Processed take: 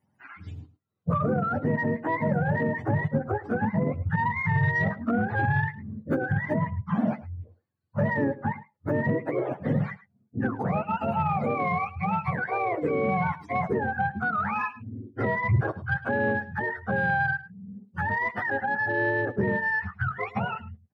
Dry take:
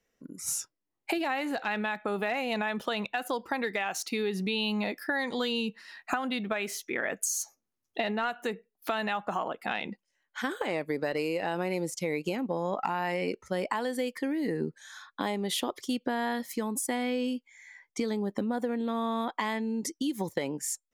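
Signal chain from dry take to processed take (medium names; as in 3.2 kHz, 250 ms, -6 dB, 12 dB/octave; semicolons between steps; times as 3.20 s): spectrum inverted on a logarithmic axis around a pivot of 630 Hz; saturation -20 dBFS, distortion -23 dB; on a send: delay 107 ms -17.5 dB; on the sum: trim +6 dB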